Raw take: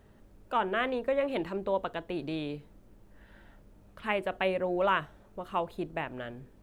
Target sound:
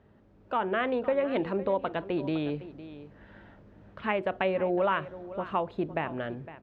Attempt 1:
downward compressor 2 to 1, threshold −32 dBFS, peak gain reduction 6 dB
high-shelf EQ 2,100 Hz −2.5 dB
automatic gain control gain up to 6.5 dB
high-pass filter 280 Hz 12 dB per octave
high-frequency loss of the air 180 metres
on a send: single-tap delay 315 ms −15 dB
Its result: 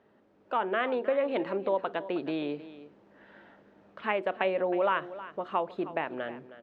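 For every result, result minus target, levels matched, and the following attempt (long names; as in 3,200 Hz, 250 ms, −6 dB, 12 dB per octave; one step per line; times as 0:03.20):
125 Hz band −9.0 dB; echo 194 ms early
downward compressor 2 to 1, threshold −32 dBFS, peak gain reduction 6 dB
high-shelf EQ 2,100 Hz −2.5 dB
automatic gain control gain up to 6.5 dB
high-pass filter 73 Hz 12 dB per octave
high-frequency loss of the air 180 metres
on a send: single-tap delay 315 ms −15 dB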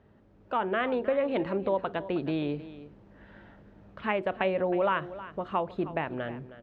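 echo 194 ms early
downward compressor 2 to 1, threshold −32 dBFS, peak gain reduction 6 dB
high-shelf EQ 2,100 Hz −2.5 dB
automatic gain control gain up to 6.5 dB
high-pass filter 73 Hz 12 dB per octave
high-frequency loss of the air 180 metres
on a send: single-tap delay 509 ms −15 dB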